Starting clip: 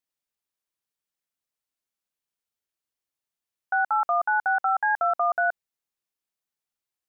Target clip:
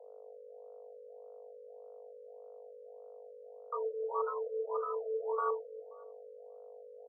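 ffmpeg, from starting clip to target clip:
-filter_complex "[0:a]highpass=f=360:w=0.5412,highpass=f=360:w=1.3066,acrossover=split=740|840[a][b][c];[a]acrusher=bits=4:mix=0:aa=0.000001[d];[d][b][c]amix=inputs=3:normalize=0,asplit=2[e][f];[f]asetrate=29433,aresample=44100,atempo=1.49831,volume=-11dB[g];[e][g]amix=inputs=2:normalize=0,aeval=exprs='val(0)+0.00708*(sin(2*PI*50*n/s)+sin(2*PI*2*50*n/s)/2+sin(2*PI*3*50*n/s)/3+sin(2*PI*4*50*n/s)/4+sin(2*PI*5*50*n/s)/5)':c=same,aresample=11025,aeval=exprs='max(val(0),0)':c=same,aresample=44100,afreqshift=440,asplit=2[h][i];[i]adelay=265,lowpass=f=1.2k:p=1,volume=-10.5dB,asplit=2[j][k];[k]adelay=265,lowpass=f=1.2k:p=1,volume=0.34,asplit=2[l][m];[m]adelay=265,lowpass=f=1.2k:p=1,volume=0.34,asplit=2[n][o];[o]adelay=265,lowpass=f=1.2k:p=1,volume=0.34[p];[h][j][l][n][p]amix=inputs=5:normalize=0,afftfilt=real='re*lt(b*sr/1024,590*pow(1500/590,0.5+0.5*sin(2*PI*1.7*pts/sr)))':imag='im*lt(b*sr/1024,590*pow(1500/590,0.5+0.5*sin(2*PI*1.7*pts/sr)))':win_size=1024:overlap=0.75,volume=-5dB"

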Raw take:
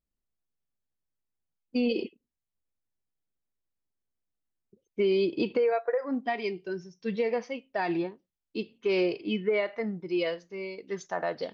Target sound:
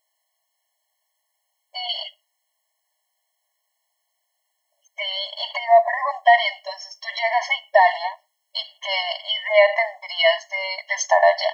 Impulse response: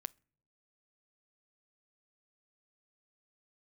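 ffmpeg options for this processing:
-filter_complex "[0:a]alimiter=level_in=1.5dB:limit=-24dB:level=0:latency=1:release=53,volume=-1.5dB,asplit=2[a][b];[1:a]atrim=start_sample=2205,afade=t=out:st=0.24:d=0.01,atrim=end_sample=11025[c];[b][c]afir=irnorm=-1:irlink=0,volume=22dB[d];[a][d]amix=inputs=2:normalize=0,afftfilt=real='re*eq(mod(floor(b*sr/1024/560),2),1)':imag='im*eq(mod(floor(b*sr/1024/560),2),1)':win_size=1024:overlap=0.75,volume=4dB"

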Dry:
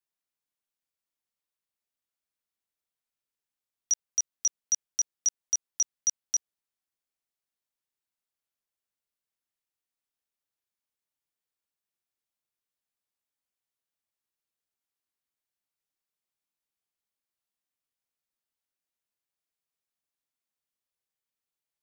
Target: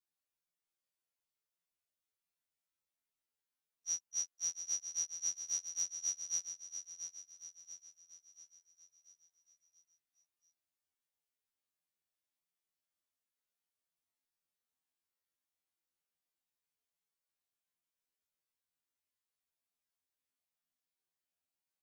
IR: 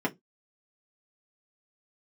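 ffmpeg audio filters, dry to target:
-af "afftfilt=real='re':imag='-im':win_size=2048:overlap=0.75,aecho=1:1:686|1372|2058|2744|3430|4116:0.376|0.184|0.0902|0.0442|0.0217|0.0106,afftfilt=real='re*2*eq(mod(b,4),0)':imag='im*2*eq(mod(b,4),0)':win_size=2048:overlap=0.75"

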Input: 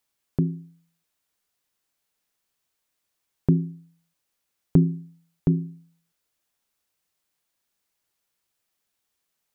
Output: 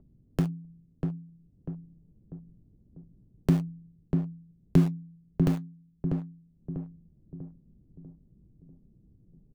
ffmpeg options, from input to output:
-filter_complex "[0:a]lowshelf=f=140:g=2,acrossover=split=240[a][b];[b]aeval=exprs='val(0)*gte(abs(val(0)),0.0335)':c=same[c];[a][c]amix=inputs=2:normalize=0,acompressor=mode=upward:threshold=-24dB:ratio=2.5,flanger=delay=4.5:depth=2.6:regen=-63:speed=1.7:shape=triangular,asplit=2[d][e];[e]adelay=644,lowpass=f=870:p=1,volume=-4dB,asplit=2[f][g];[g]adelay=644,lowpass=f=870:p=1,volume=0.49,asplit=2[h][i];[i]adelay=644,lowpass=f=870:p=1,volume=0.49,asplit=2[j][k];[k]adelay=644,lowpass=f=870:p=1,volume=0.49,asplit=2[l][m];[m]adelay=644,lowpass=f=870:p=1,volume=0.49,asplit=2[n][o];[o]adelay=644,lowpass=f=870:p=1,volume=0.49[p];[d][f][h][j][l][n][p]amix=inputs=7:normalize=0"

